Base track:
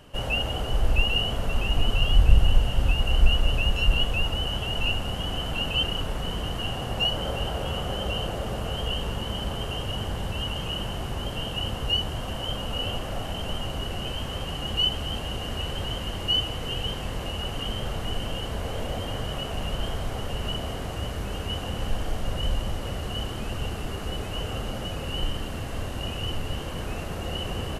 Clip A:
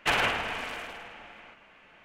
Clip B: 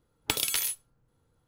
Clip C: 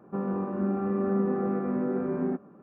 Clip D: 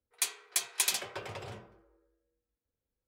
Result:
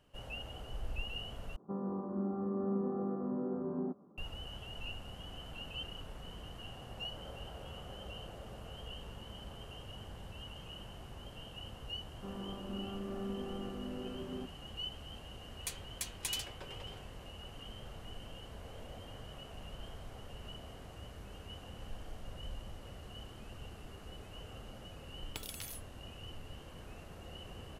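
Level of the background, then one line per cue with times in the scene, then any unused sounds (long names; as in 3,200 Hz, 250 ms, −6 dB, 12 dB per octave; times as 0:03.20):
base track −18 dB
0:01.56: overwrite with C −8 dB + Chebyshev low-pass filter 1,100 Hz, order 3
0:12.10: mix in C −14.5 dB
0:15.45: mix in D −10.5 dB
0:25.06: mix in B −17.5 dB
not used: A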